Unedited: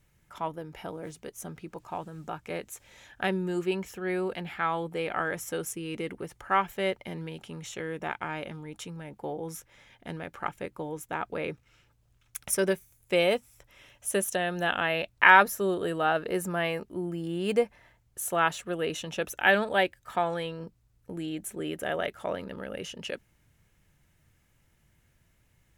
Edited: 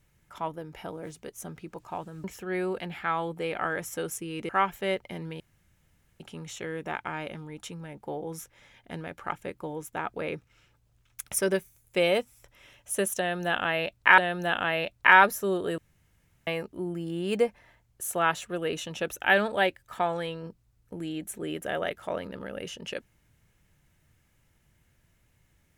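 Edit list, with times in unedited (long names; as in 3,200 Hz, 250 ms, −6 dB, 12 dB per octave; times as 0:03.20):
0:02.24–0:03.79: remove
0:06.04–0:06.45: remove
0:07.36: splice in room tone 0.80 s
0:14.35–0:15.34: repeat, 2 plays
0:15.95–0:16.64: fill with room tone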